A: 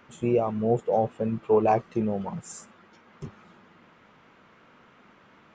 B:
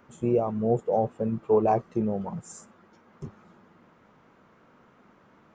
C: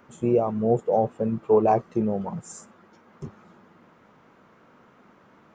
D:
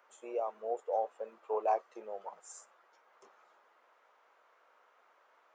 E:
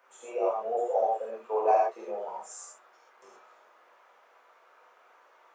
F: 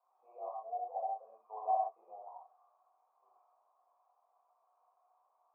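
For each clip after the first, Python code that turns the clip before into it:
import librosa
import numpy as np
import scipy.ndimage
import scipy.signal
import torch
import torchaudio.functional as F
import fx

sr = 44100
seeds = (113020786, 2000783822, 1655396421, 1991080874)

y1 = fx.peak_eq(x, sr, hz=2900.0, db=-9.0, octaves=1.9)
y2 = fx.low_shelf(y1, sr, hz=83.0, db=-5.5)
y2 = F.gain(torch.from_numpy(y2), 3.0).numpy()
y3 = scipy.signal.sosfilt(scipy.signal.butter(4, 540.0, 'highpass', fs=sr, output='sos'), y2)
y3 = F.gain(torch.from_numpy(y3), -8.5).numpy()
y4 = fx.rev_gated(y3, sr, seeds[0], gate_ms=150, shape='flat', drr_db=-6.5)
y5 = fx.formant_cascade(y4, sr, vowel='a')
y5 = F.gain(torch.from_numpy(y5), -4.5).numpy()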